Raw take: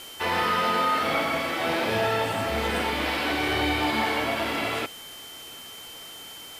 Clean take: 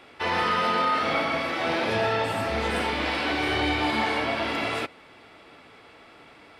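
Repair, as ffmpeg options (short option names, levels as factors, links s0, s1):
-af "adeclick=t=4,bandreject=f=3100:w=30,afwtdn=0.0056"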